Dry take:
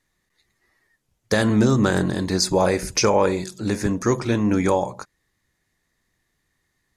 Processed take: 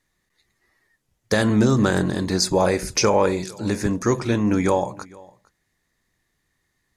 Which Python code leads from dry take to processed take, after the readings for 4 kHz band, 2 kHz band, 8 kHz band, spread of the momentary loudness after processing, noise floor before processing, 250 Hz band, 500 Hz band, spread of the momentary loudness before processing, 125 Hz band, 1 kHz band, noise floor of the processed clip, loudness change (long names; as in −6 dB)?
0.0 dB, 0.0 dB, 0.0 dB, 7 LU, −73 dBFS, 0.0 dB, 0.0 dB, 7 LU, 0.0 dB, 0.0 dB, −73 dBFS, 0.0 dB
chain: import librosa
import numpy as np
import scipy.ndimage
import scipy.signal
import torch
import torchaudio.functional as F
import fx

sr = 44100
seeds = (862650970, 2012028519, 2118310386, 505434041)

y = x + 10.0 ** (-24.0 / 20.0) * np.pad(x, (int(456 * sr / 1000.0), 0))[:len(x)]